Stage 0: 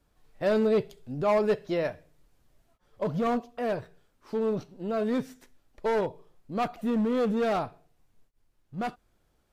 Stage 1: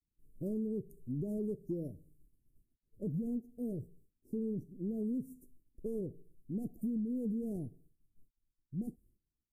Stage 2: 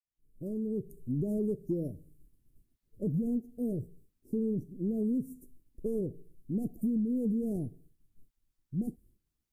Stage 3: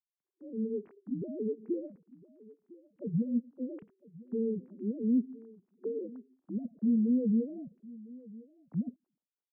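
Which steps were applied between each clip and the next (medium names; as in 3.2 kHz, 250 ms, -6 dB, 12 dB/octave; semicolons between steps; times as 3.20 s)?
expander -56 dBFS; inverse Chebyshev band-stop 1.1–3.4 kHz, stop band 70 dB; compression 10:1, threshold -33 dBFS, peak gain reduction 9.5 dB
fade-in on the opening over 0.93 s; trim +5.5 dB
formants replaced by sine waves; delay 1005 ms -20.5 dB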